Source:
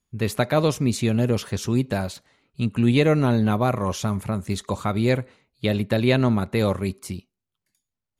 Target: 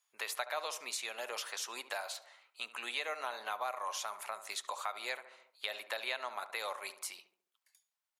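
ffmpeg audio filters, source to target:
-filter_complex "[0:a]highpass=f=750:w=0.5412,highpass=f=750:w=1.3066,asplit=2[a][b];[b]adelay=71,lowpass=f=1.4k:p=1,volume=-13dB,asplit=2[c][d];[d]adelay=71,lowpass=f=1.4k:p=1,volume=0.49,asplit=2[e][f];[f]adelay=71,lowpass=f=1.4k:p=1,volume=0.49,asplit=2[g][h];[h]adelay=71,lowpass=f=1.4k:p=1,volume=0.49,asplit=2[i][j];[j]adelay=71,lowpass=f=1.4k:p=1,volume=0.49[k];[a][c][e][g][i][k]amix=inputs=6:normalize=0,acompressor=threshold=-43dB:ratio=2.5,volume=2.5dB"

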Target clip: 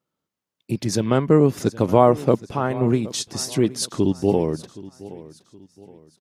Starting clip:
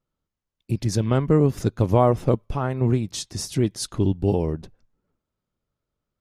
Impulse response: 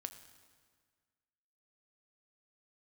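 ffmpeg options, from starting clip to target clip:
-af "highpass=170,aecho=1:1:770|1540|2310:0.119|0.0452|0.0172,volume=4dB"

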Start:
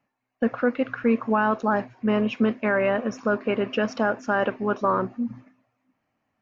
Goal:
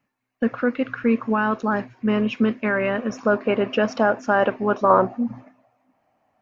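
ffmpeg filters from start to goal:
-af "asetnsamples=n=441:p=0,asendcmd='3.1 equalizer g 3.5;4.9 equalizer g 12',equalizer=f=710:t=o:w=1:g=-5.5,volume=2.5dB"

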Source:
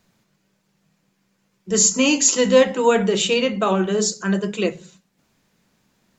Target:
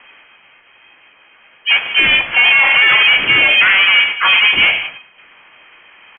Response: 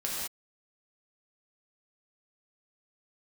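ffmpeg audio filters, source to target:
-filter_complex "[0:a]asplit=2[a][b];[b]highpass=f=720:p=1,volume=33dB,asoftclip=type=tanh:threshold=-2.5dB[c];[a][c]amix=inputs=2:normalize=0,lowpass=f=1.1k:p=1,volume=-6dB,lowpass=f=2.3k:t=q:w=0.5098,lowpass=f=2.3k:t=q:w=0.6013,lowpass=f=2.3k:t=q:w=0.9,lowpass=f=2.3k:t=q:w=2.563,afreqshift=-2700,asplit=2[d][e];[1:a]atrim=start_sample=2205,asetrate=48510,aresample=44100[f];[e][f]afir=irnorm=-1:irlink=0,volume=-15.5dB[g];[d][g]amix=inputs=2:normalize=0,asplit=3[h][i][j];[i]asetrate=33038,aresample=44100,atempo=1.33484,volume=-16dB[k];[j]asetrate=55563,aresample=44100,atempo=0.793701,volume=-3dB[l];[h][k][l]amix=inputs=3:normalize=0,alimiter=level_in=1dB:limit=-1dB:release=50:level=0:latency=1,volume=-1dB"

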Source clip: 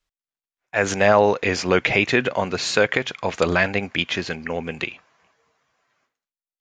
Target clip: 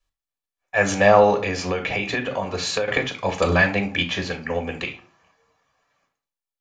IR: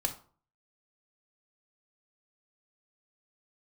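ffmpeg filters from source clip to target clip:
-filter_complex "[1:a]atrim=start_sample=2205[a];[0:a][a]afir=irnorm=-1:irlink=0,asettb=1/sr,asplit=3[b][c][d];[b]atrim=end=1.414[e];[c]atrim=start=1.41:end=2.88,asetpts=PTS-STARTPTS,afade=t=in:d=0.004:c=qsin,afade=t=out:st=1.466:d=0.004:c=qsin,acompressor=threshold=-18dB:ratio=6[f];[d]atrim=start=2.876[g];[e][f]acrossfade=d=0.004:c1=hsin:c2=qsin[h];[h][g]acrossfade=d=0.004:c1=qsin:c2=hsin,volume=-3.5dB"

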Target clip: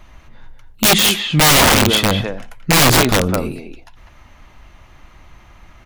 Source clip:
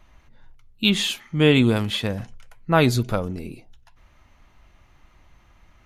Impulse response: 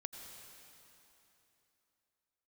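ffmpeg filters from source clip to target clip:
-filter_complex "[0:a]asplit=2[a][b];[b]adelay=200,highpass=300,lowpass=3.4k,asoftclip=type=hard:threshold=-11dB,volume=-6dB[c];[a][c]amix=inputs=2:normalize=0,asplit=2[d][e];[1:a]atrim=start_sample=2205,atrim=end_sample=3969[f];[e][f]afir=irnorm=-1:irlink=0,volume=7dB[g];[d][g]amix=inputs=2:normalize=0,aeval=exprs='(mod(2.66*val(0)+1,2)-1)/2.66':c=same,volume=3dB"

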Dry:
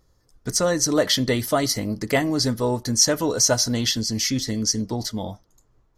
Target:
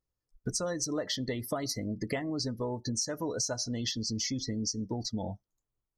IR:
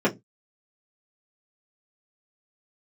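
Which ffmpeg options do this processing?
-af "afftdn=nr=26:nf=-31,acompressor=threshold=-30dB:ratio=10"

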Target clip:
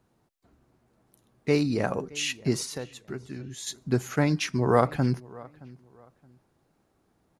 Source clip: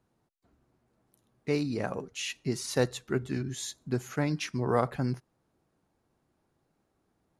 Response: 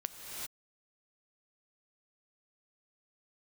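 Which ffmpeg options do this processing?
-filter_complex "[0:a]asettb=1/sr,asplit=3[a][b][c];[a]atrim=end=2.644[d];[b]atrim=start=2.64:end=3.67,asetpts=PTS-STARTPTS,afade=t=in:d=0.004:c=qsin,afade=t=out:st=1.026:d=0.004:c=qsin,acompressor=threshold=-44dB:ratio=3[e];[c]atrim=start=3.666[f];[d][e]acrossfade=d=0.004:c1=hsin:c2=qsin[g];[g][f]acrossfade=d=0.004:c1=qsin:c2=hsin,asplit=2[h][i];[i]adelay=621,lowpass=f=3.1k:p=1,volume=-22dB,asplit=2[j][k];[k]adelay=621,lowpass=f=3.1k:p=1,volume=0.28[l];[h][j][l]amix=inputs=3:normalize=0,volume=5.5dB"

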